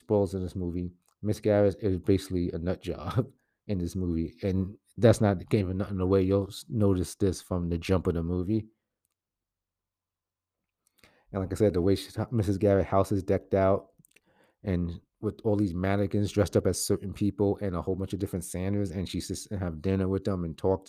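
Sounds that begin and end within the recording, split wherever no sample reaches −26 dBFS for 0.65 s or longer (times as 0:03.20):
0:11.35–0:13.78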